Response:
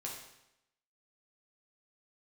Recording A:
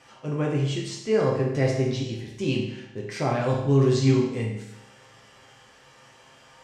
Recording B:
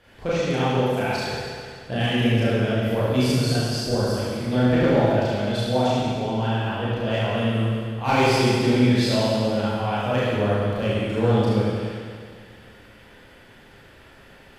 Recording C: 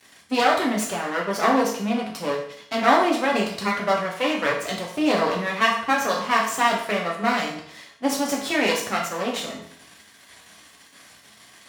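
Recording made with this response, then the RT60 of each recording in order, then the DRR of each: A; 0.85 s, 2.0 s, 0.60 s; -3.0 dB, -10.0 dB, -2.5 dB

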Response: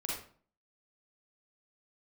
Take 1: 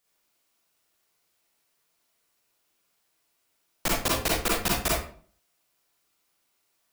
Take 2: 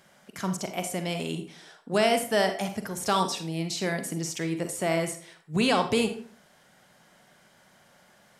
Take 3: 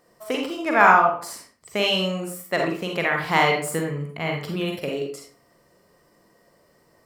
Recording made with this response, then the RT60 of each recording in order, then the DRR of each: 1; 0.45 s, 0.45 s, 0.45 s; -4.5 dB, 7.0 dB, 0.5 dB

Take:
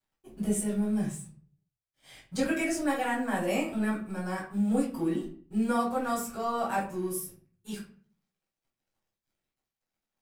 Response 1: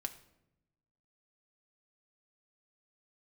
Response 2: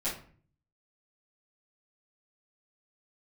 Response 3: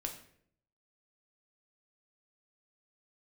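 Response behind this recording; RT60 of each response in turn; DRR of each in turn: 2; 0.85 s, 0.45 s, 0.65 s; 5.0 dB, -11.5 dB, 2.5 dB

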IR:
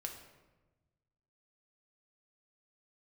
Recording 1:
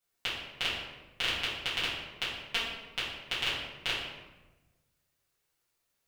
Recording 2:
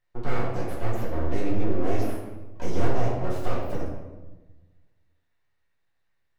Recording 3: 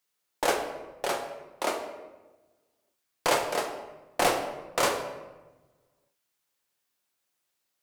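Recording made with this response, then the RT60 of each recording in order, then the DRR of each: 3; 1.2 s, 1.2 s, 1.2 s; -12.0 dB, -6.5 dB, 2.0 dB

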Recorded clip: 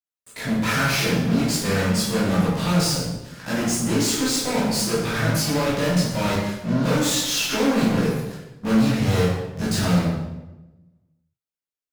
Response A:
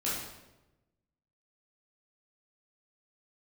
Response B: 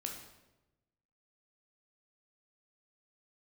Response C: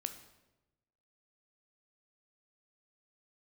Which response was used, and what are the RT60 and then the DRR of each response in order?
A; 1.0 s, 1.0 s, 1.0 s; -8.5 dB, 1.0 dB, 8.0 dB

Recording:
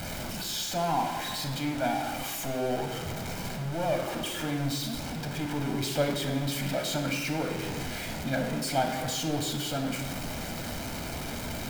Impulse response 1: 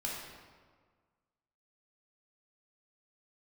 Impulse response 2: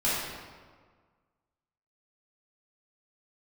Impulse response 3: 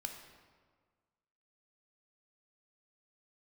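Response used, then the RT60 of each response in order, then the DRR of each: 3; 1.6 s, 1.6 s, 1.6 s; -4.5 dB, -10.5 dB, 3.5 dB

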